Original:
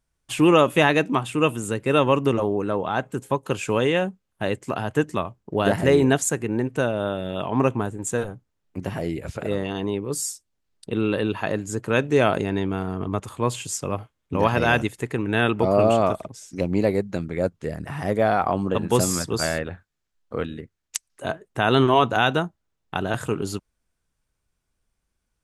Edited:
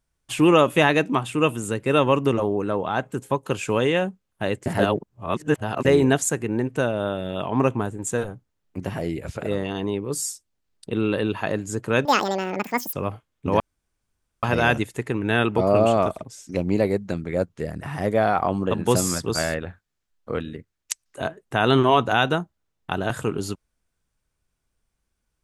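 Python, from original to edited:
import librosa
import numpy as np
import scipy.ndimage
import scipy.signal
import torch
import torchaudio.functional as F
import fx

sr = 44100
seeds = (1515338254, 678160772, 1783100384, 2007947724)

y = fx.edit(x, sr, fx.reverse_span(start_s=4.66, length_s=1.19),
    fx.speed_span(start_s=12.05, length_s=1.75, speed=1.99),
    fx.insert_room_tone(at_s=14.47, length_s=0.83), tone=tone)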